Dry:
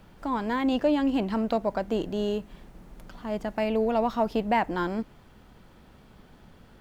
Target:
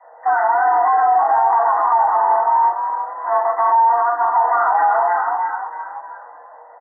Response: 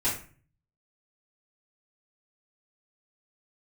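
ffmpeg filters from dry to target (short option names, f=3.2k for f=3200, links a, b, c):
-filter_complex "[0:a]flanger=delay=9.9:depth=3.5:regen=-54:speed=0.59:shape=triangular,asplit=2[a][b];[b]acrusher=bits=4:mix=0:aa=0.5,volume=-4dB[c];[a][c]amix=inputs=2:normalize=0,equalizer=f=360:w=0.55:g=13.5,asplit=6[d][e][f][g][h][i];[e]adelay=313,afreqshift=40,volume=-7.5dB[j];[f]adelay=626,afreqshift=80,volume=-14.1dB[k];[g]adelay=939,afreqshift=120,volume=-20.6dB[l];[h]adelay=1252,afreqshift=160,volume=-27.2dB[m];[i]adelay=1565,afreqshift=200,volume=-33.7dB[n];[d][j][k][l][m][n]amix=inputs=6:normalize=0,asettb=1/sr,asplit=3[o][p][q];[o]atrim=end=3.924[r];[p]atrim=start=3.92:end=4.33,asetpts=PTS-STARTPTS,afade=t=in:d=0.004:c=qsin,afade=t=out:st=0.406:d=0.004:c=qsin,agate=range=-7dB:threshold=-5dB:ratio=16:detection=peak[s];[q]atrim=start=4.326[t];[r][s]acrossfade=d=0.004:c1=hsin:c2=qsin[u];[u][t]acrossfade=d=0.004:c1=qsin:c2=hsin,asoftclip=type=tanh:threshold=-5dB,afreqshift=470,acrusher=bits=3:mode=log:mix=0:aa=0.000001[v];[1:a]atrim=start_sample=2205[w];[v][w]afir=irnorm=-1:irlink=0,afftfilt=real='re*between(b*sr/4096,280,2000)':imag='im*between(b*sr/4096,280,2000)':win_size=4096:overlap=0.75,alimiter=level_in=3.5dB:limit=-1dB:release=50:level=0:latency=1,volume=-7dB"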